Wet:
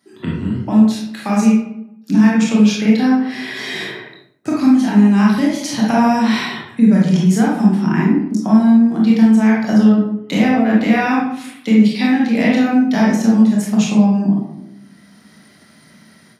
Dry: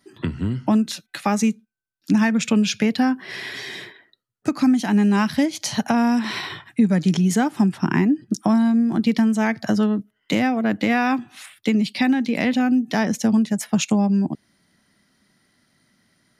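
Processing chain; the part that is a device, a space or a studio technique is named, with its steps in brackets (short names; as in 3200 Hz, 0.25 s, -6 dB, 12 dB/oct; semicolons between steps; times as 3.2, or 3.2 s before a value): far laptop microphone (reverb RT60 0.80 s, pre-delay 22 ms, DRR -4.5 dB; HPF 110 Hz; AGC); gain -1 dB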